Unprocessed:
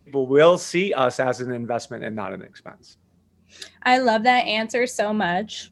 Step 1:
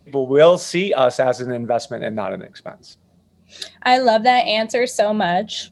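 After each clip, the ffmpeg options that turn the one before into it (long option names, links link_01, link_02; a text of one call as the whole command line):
ffmpeg -i in.wav -filter_complex "[0:a]equalizer=frequency=160:width_type=o:width=0.67:gain=4,equalizer=frequency=630:width_type=o:width=0.67:gain=8,equalizer=frequency=4000:width_type=o:width=0.67:gain=7,equalizer=frequency=10000:width_type=o:width=0.67:gain=4,asplit=2[link_01][link_02];[link_02]acompressor=threshold=-21dB:ratio=6,volume=-2.5dB[link_03];[link_01][link_03]amix=inputs=2:normalize=0,volume=-3dB" out.wav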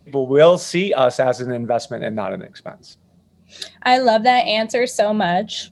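ffmpeg -i in.wav -af "equalizer=frequency=150:width=1.5:gain=2.5" out.wav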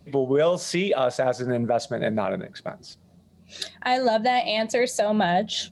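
ffmpeg -i in.wav -af "alimiter=limit=-12.5dB:level=0:latency=1:release=284" out.wav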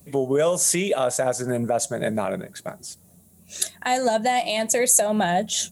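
ffmpeg -i in.wav -af "aexciter=amount=9.6:drive=5.8:freq=6700" out.wav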